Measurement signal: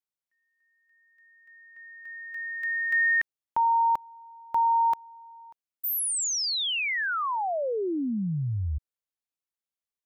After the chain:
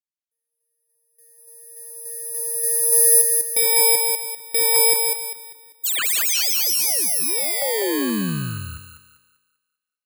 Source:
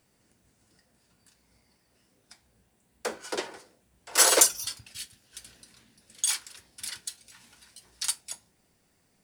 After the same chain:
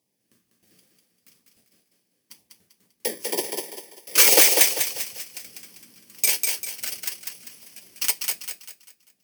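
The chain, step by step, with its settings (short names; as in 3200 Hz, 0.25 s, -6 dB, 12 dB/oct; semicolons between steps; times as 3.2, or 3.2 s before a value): FFT order left unsorted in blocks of 32 samples; LFO notch saw down 2.1 Hz 620–1600 Hz; HPF 170 Hz 12 dB/oct; added harmonics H 3 -44 dB, 6 -43 dB, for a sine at -3 dBFS; gate with hold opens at -57 dBFS, closes at -60 dBFS, hold 31 ms, range -13 dB; thinning echo 0.197 s, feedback 38%, high-pass 220 Hz, level -4 dB; in parallel at -10 dB: wavefolder -14.5 dBFS; on the sum: maximiser +5.5 dB; gain -1 dB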